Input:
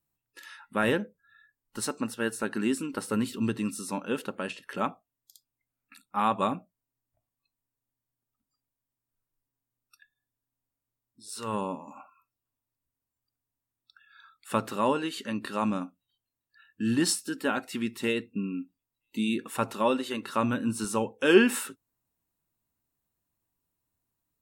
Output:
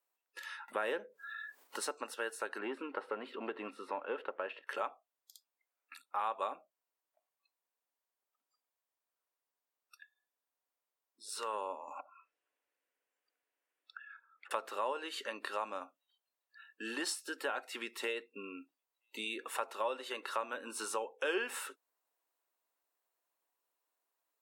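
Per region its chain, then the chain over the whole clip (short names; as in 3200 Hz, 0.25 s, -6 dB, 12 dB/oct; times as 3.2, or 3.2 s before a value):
0.68–1.92 low shelf 260 Hz +9.5 dB + upward compressor, threshold -33 dBFS
2.59–4.67 sample leveller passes 1 + air absorption 480 m
11.99–14.51 band shelf 2100 Hz +8.5 dB 1.3 oct + small resonant body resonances 310/470 Hz, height 9 dB, ringing for 20 ms + treble ducked by the level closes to 360 Hz, closed at -44 dBFS
whole clip: HPF 460 Hz 24 dB/oct; high shelf 4000 Hz -7.5 dB; compressor 2.5:1, threshold -41 dBFS; gain +3 dB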